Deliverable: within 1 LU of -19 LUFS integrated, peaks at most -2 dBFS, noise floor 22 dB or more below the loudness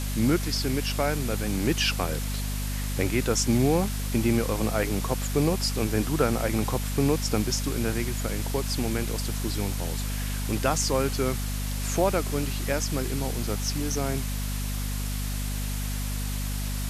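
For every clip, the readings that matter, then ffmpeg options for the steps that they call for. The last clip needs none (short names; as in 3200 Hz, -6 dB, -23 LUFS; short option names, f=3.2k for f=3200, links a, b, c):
hum 50 Hz; harmonics up to 250 Hz; hum level -28 dBFS; noise floor -30 dBFS; noise floor target -50 dBFS; loudness -27.5 LUFS; peak -9.5 dBFS; loudness target -19.0 LUFS
-> -af "bandreject=f=50:t=h:w=4,bandreject=f=100:t=h:w=4,bandreject=f=150:t=h:w=4,bandreject=f=200:t=h:w=4,bandreject=f=250:t=h:w=4"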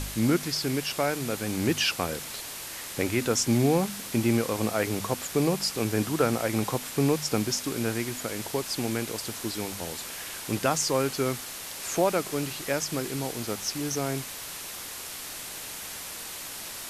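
hum none; noise floor -39 dBFS; noise floor target -51 dBFS
-> -af "afftdn=nr=12:nf=-39"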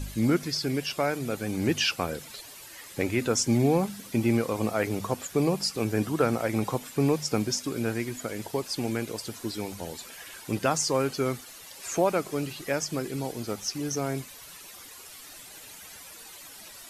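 noise floor -46 dBFS; noise floor target -51 dBFS
-> -af "afftdn=nr=6:nf=-46"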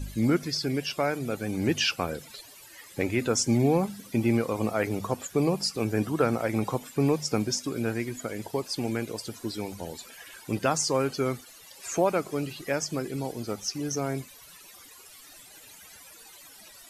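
noise floor -50 dBFS; noise floor target -51 dBFS
-> -af "afftdn=nr=6:nf=-50"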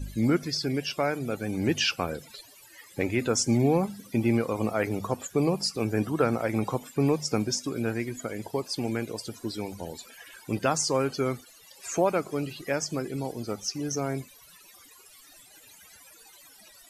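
noise floor -53 dBFS; loudness -28.5 LUFS; peak -10.5 dBFS; loudness target -19.0 LUFS
-> -af "volume=9.5dB,alimiter=limit=-2dB:level=0:latency=1"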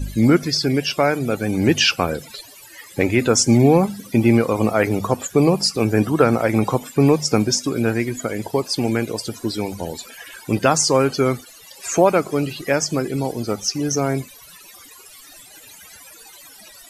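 loudness -19.0 LUFS; peak -2.0 dBFS; noise floor -44 dBFS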